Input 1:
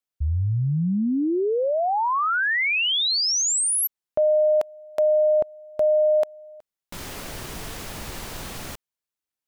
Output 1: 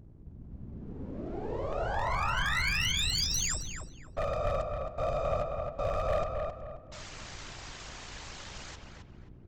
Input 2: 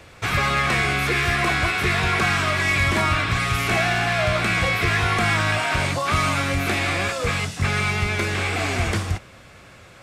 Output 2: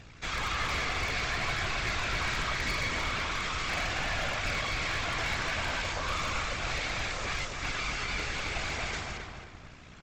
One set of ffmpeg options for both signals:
ffmpeg -i in.wav -filter_complex "[0:a]highpass=frequency=930:poles=1,asplit=2[link_01][link_02];[link_02]alimiter=limit=-21.5dB:level=0:latency=1:release=15,volume=2dB[link_03];[link_01][link_03]amix=inputs=2:normalize=0,aeval=exprs='val(0)+0.0126*(sin(2*PI*60*n/s)+sin(2*PI*2*60*n/s)/2+sin(2*PI*3*60*n/s)/3+sin(2*PI*4*60*n/s)/4+sin(2*PI*5*60*n/s)/5)':channel_layout=same,aresample=16000,aeval=exprs='max(val(0),0)':channel_layout=same,aresample=44100,afftfilt=real='hypot(re,im)*cos(2*PI*random(0))':imag='hypot(re,im)*sin(2*PI*random(1))':win_size=512:overlap=0.75,aeval=exprs='0.0944*(abs(mod(val(0)/0.0944+3,4)-2)-1)':channel_layout=same,asplit=2[link_04][link_05];[link_05]adelay=266,lowpass=frequency=2300:poles=1,volume=-3.5dB,asplit=2[link_06][link_07];[link_07]adelay=266,lowpass=frequency=2300:poles=1,volume=0.36,asplit=2[link_08][link_09];[link_09]adelay=266,lowpass=frequency=2300:poles=1,volume=0.36,asplit=2[link_10][link_11];[link_11]adelay=266,lowpass=frequency=2300:poles=1,volume=0.36,asplit=2[link_12][link_13];[link_13]adelay=266,lowpass=frequency=2300:poles=1,volume=0.36[link_14];[link_04][link_06][link_08][link_10][link_12][link_14]amix=inputs=6:normalize=0,volume=-3.5dB" out.wav

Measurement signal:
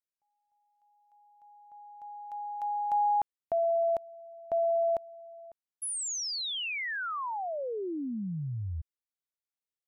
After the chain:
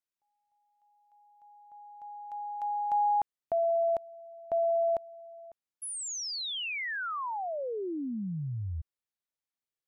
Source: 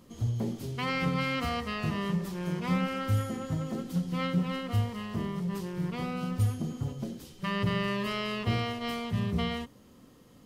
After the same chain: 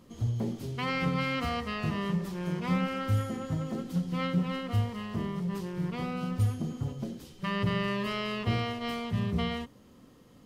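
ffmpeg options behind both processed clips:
ffmpeg -i in.wav -af "highshelf=frequency=6300:gain=-4.5" out.wav

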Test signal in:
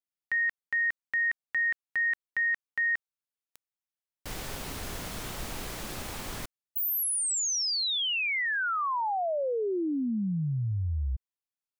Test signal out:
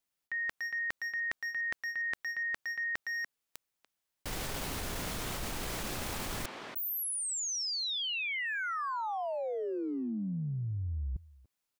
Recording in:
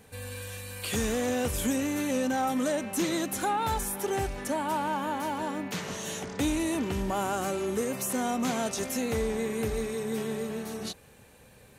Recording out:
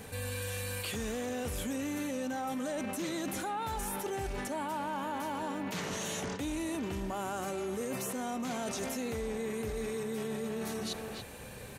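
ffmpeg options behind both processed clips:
ffmpeg -i in.wav -filter_complex "[0:a]acrossover=split=4600[link_01][link_02];[link_02]acompressor=threshold=-35dB:ratio=4:attack=1:release=60[link_03];[link_01][link_03]amix=inputs=2:normalize=0,asplit=2[link_04][link_05];[link_05]adelay=290,highpass=300,lowpass=3400,asoftclip=type=hard:threshold=-28.5dB,volume=-11dB[link_06];[link_04][link_06]amix=inputs=2:normalize=0,areverse,acompressor=threshold=-43dB:ratio=8:attack=6.9:release=53:detection=rms,areverse,volume=8.5dB" out.wav

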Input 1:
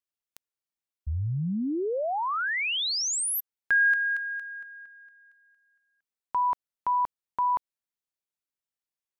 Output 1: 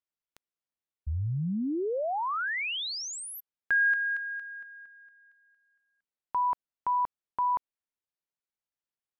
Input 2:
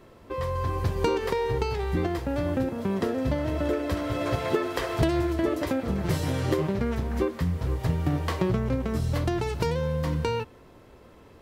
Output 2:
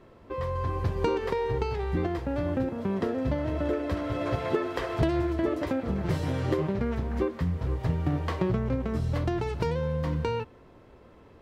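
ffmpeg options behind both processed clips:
ffmpeg -i in.wav -af "lowpass=frequency=2900:poles=1,volume=-1.5dB" out.wav

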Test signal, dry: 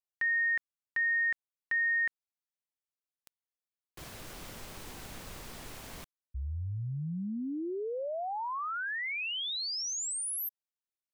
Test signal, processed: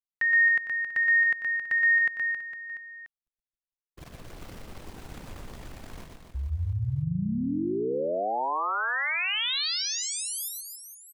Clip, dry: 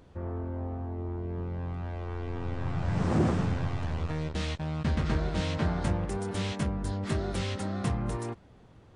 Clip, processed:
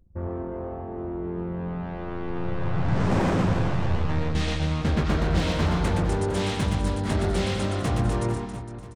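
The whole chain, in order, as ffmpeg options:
ffmpeg -i in.wav -filter_complex "[0:a]acrossover=split=4500[link_01][link_02];[link_02]acompressor=threshold=-40dB:ratio=4:attack=1:release=60[link_03];[link_01][link_03]amix=inputs=2:normalize=0,aeval=exprs='0.0668*(abs(mod(val(0)/0.0668+3,4)-2)-1)':channel_layout=same,anlmdn=0.0631,aecho=1:1:120|270|457.5|691.9|984.8:0.631|0.398|0.251|0.158|0.1,volume=5dB" out.wav

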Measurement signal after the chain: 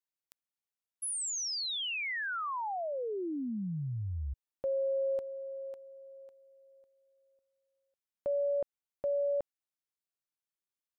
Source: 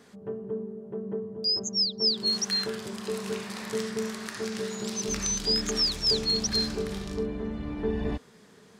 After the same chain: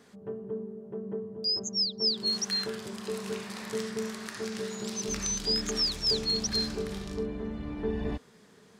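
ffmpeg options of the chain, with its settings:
ffmpeg -i in.wav -af "asoftclip=type=hard:threshold=-13.5dB,volume=-2.5dB" out.wav

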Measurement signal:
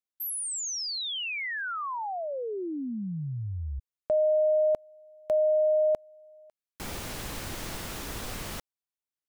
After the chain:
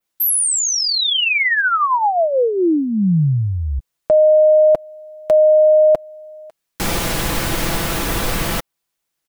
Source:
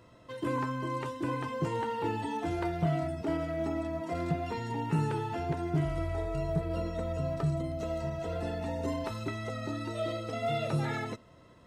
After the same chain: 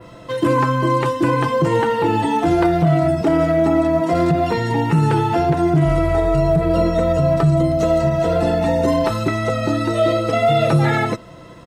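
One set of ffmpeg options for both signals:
ffmpeg -i in.wav -af "aecho=1:1:6:0.39,adynamicequalizer=threshold=0.00282:dfrequency=6300:dqfactor=0.8:tfrequency=6300:tqfactor=0.8:attack=5:release=100:ratio=0.375:range=2:mode=cutabove:tftype=bell,alimiter=level_in=23dB:limit=-1dB:release=50:level=0:latency=1,volume=-6.5dB" out.wav

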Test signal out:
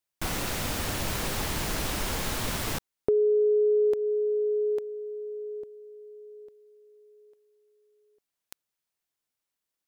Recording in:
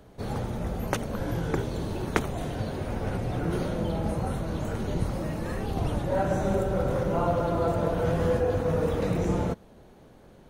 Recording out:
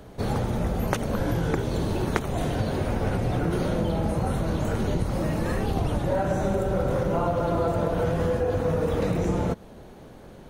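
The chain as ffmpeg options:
ffmpeg -i in.wav -af "acompressor=threshold=-28dB:ratio=6,volume=7dB" out.wav

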